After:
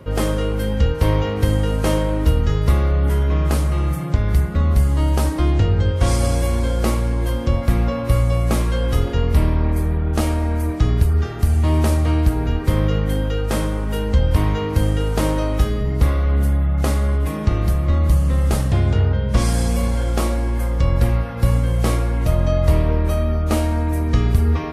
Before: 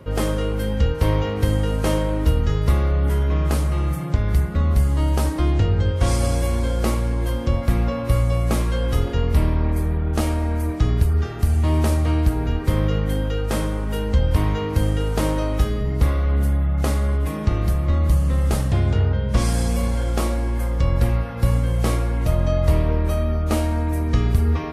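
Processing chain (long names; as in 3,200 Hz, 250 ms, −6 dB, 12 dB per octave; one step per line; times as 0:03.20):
hum removal 435.4 Hz, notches 20
level +2 dB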